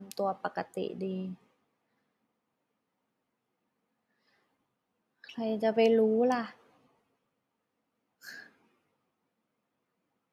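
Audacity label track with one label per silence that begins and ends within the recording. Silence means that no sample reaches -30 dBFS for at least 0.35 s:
1.220000	5.380000	silence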